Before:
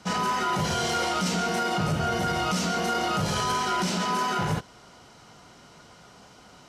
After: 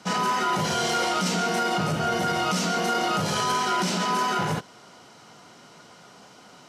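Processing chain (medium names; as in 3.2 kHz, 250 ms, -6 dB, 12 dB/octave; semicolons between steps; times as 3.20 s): high-pass 150 Hz 12 dB/octave; trim +2 dB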